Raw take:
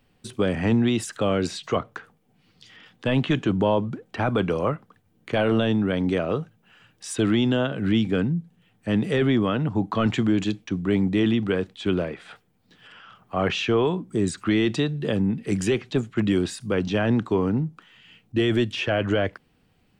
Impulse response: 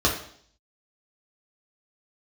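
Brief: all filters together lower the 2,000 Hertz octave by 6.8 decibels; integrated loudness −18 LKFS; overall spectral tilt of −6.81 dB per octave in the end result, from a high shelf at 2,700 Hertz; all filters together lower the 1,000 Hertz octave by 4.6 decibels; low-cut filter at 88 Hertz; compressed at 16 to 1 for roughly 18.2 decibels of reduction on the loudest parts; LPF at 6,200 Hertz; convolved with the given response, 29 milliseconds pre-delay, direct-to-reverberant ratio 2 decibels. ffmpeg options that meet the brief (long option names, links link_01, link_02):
-filter_complex "[0:a]highpass=88,lowpass=6200,equalizer=frequency=1000:width_type=o:gain=-4,equalizer=frequency=2000:width_type=o:gain=-5,highshelf=frequency=2700:gain=-6,acompressor=threshold=-36dB:ratio=16,asplit=2[link_01][link_02];[1:a]atrim=start_sample=2205,adelay=29[link_03];[link_02][link_03]afir=irnorm=-1:irlink=0,volume=-17dB[link_04];[link_01][link_04]amix=inputs=2:normalize=0,volume=19.5dB"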